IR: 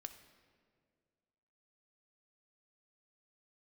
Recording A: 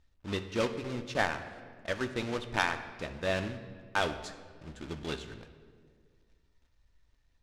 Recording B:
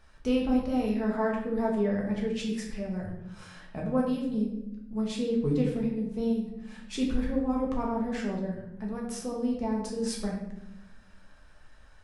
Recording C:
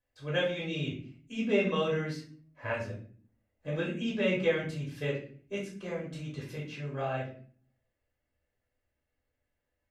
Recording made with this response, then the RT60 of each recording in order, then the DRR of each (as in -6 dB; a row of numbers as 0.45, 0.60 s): A; 2.0, 0.90, 0.45 s; 7.5, -2.0, -5.5 dB